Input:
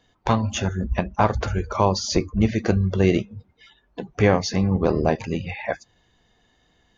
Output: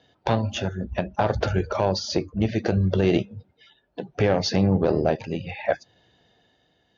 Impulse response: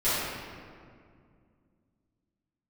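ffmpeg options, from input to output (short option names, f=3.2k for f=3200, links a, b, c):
-af "tremolo=f=0.66:d=0.48,aeval=exprs='0.531*(cos(1*acos(clip(val(0)/0.531,-1,1)))-cos(1*PI/2))+0.0473*(cos(4*acos(clip(val(0)/0.531,-1,1)))-cos(4*PI/2))':c=same,highpass=100,equalizer=f=220:t=q:w=4:g=-4,equalizer=f=590:t=q:w=4:g=4,equalizer=f=1.1k:t=q:w=4:g=-9,equalizer=f=2.1k:t=q:w=4:g=-5,lowpass=f=5.3k:w=0.5412,lowpass=f=5.3k:w=1.3066,alimiter=level_in=12.5dB:limit=-1dB:release=50:level=0:latency=1,volume=-8.5dB"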